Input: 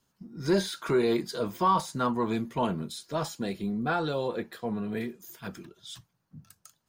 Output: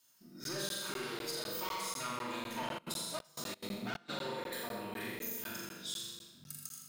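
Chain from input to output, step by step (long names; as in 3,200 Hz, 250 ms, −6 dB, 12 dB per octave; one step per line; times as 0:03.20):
tube saturation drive 27 dB, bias 0.5
spectral tilt +4 dB per octave
flutter between parallel walls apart 7 metres, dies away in 0.72 s
downward compressor, threshold −36 dBFS, peak gain reduction 13 dB
convolution reverb RT60 1.7 s, pre-delay 3 ms, DRR −3 dB
0:02.77–0:04.08: gate pattern "xx..xx.xx" 178 BPM −24 dB
regular buffer underruns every 0.25 s, samples 512, zero, from 0:00.44
level −4.5 dB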